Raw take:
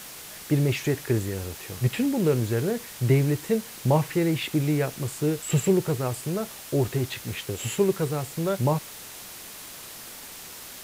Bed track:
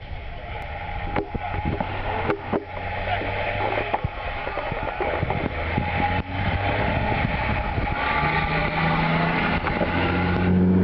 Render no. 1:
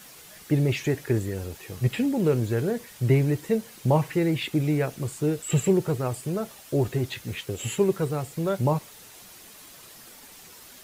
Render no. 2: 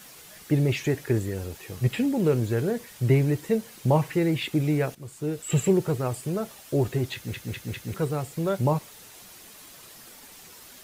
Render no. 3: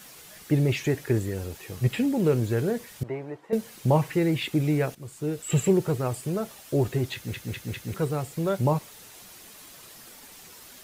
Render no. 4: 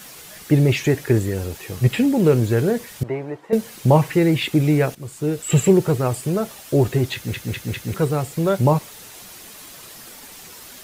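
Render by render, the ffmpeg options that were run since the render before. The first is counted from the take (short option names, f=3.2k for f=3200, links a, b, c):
-af "afftdn=nr=8:nf=-42"
-filter_complex "[0:a]asplit=6[a][b][c][d][e][f];[a]atrim=end=4.95,asetpts=PTS-STARTPTS,afade=t=out:st=4.946:d=0.004:c=hsin:silence=0.188365[g];[b]atrim=start=4.95:end=7.342,asetpts=PTS-STARTPTS,afade=t=in:d=0.64:silence=0.188365[h];[c]atrim=start=7.138:end=7.342[i];[d]atrim=start=7.138:end=7.342[j];[e]atrim=start=7.138:end=7.342[k];[f]atrim=start=7.938[l];[g][h]concat=n=2:v=0:a=1[m];[m][i]acrossfade=d=0.004:c1=hsin:c2=hsin[n];[n][j]acrossfade=d=0.004:c1=hsin:c2=hsin[o];[o][k]acrossfade=d=0.004:c1=hsin:c2=hsin[p];[p][l]acrossfade=d=0.004:c1=hsin:c2=hsin"
-filter_complex "[0:a]asettb=1/sr,asplit=3[a][b][c];[a]atrim=end=3.034[d];[b]atrim=start=3.03:end=3.53,asetpts=PTS-STARTPTS,afade=t=in:d=0.004:c=qsin,afade=t=out:st=0.496:d=0.004:c=qsin,bandpass=f=840:t=q:w=1.6[e];[c]atrim=start=3.526[f];[d][e]acrossfade=d=0.004:c1=hsin:c2=qsin[g];[g][f]acrossfade=d=0.004:c1=qsin:c2=hsin"
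-af "volume=7dB"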